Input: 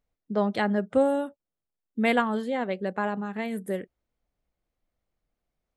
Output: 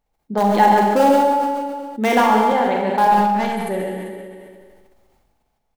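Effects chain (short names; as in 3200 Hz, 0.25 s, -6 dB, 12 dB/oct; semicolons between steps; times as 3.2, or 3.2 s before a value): in parallel at -10 dB: wrapped overs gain 16.5 dB; 0.55–2.52 on the sum: resonant low shelf 190 Hz -14 dB, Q 1.5; on a send: tapped delay 0.132/0.151/0.391 s -10/-13/-17.5 dB; 3.11–3.55 on the sum: hard clip -26.5 dBFS, distortion -23 dB; bell 850 Hz +14 dB 0.27 oct; Schroeder reverb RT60 1.3 s, combs from 29 ms, DRR 0.5 dB; sustainer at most 27 dB/s; gain +1.5 dB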